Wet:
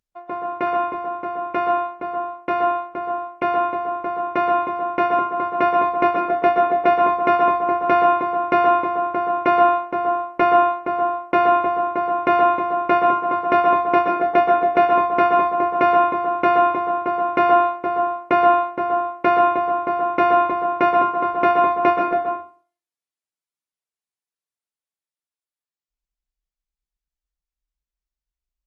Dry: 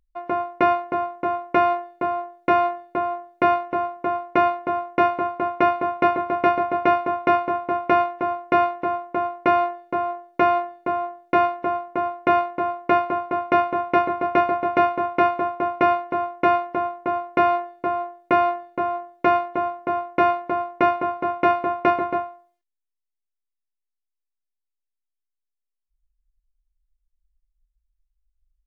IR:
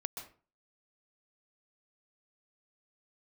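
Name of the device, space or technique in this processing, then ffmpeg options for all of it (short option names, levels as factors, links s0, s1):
far-field microphone of a smart speaker: -filter_complex "[1:a]atrim=start_sample=2205[s0];[0:a][s0]afir=irnorm=-1:irlink=0,highpass=f=140:p=1,dynaudnorm=f=590:g=17:m=4.47,volume=0.75" -ar 48000 -c:a libopus -b:a 24k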